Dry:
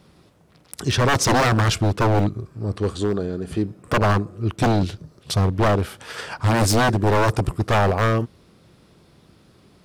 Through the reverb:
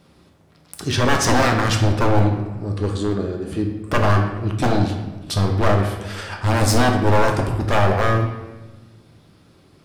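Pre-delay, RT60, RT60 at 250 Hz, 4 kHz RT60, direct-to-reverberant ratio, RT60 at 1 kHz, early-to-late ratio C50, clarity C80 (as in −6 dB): 3 ms, 1.1 s, 1.5 s, 0.80 s, 2.0 dB, 1.1 s, 5.5 dB, 8.0 dB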